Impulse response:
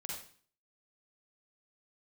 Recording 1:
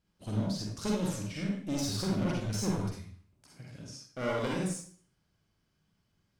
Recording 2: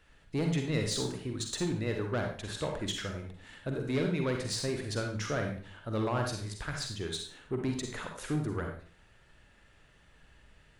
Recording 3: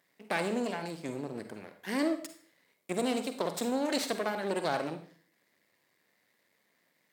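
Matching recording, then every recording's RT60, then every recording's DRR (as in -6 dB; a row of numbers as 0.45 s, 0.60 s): 1; 0.45 s, 0.45 s, 0.45 s; -3.0 dB, 2.5 dB, 8.0 dB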